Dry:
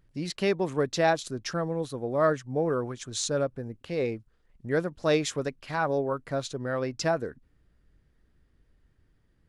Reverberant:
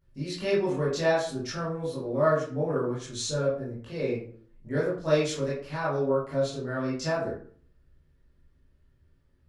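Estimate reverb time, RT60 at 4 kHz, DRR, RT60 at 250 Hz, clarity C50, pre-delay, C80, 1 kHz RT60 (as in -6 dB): 0.50 s, 0.30 s, -9.5 dB, 0.60 s, 2.5 dB, 16 ms, 8.5 dB, 0.45 s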